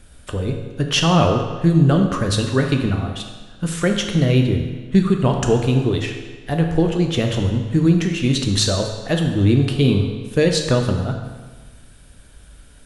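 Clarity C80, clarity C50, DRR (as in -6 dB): 7.0 dB, 5.5 dB, 3.0 dB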